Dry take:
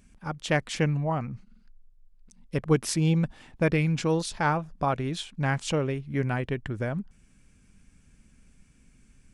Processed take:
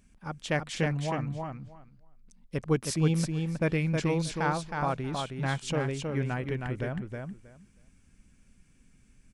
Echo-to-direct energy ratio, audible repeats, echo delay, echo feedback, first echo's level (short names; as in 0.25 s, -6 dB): -4.5 dB, 2, 0.317 s, 16%, -4.5 dB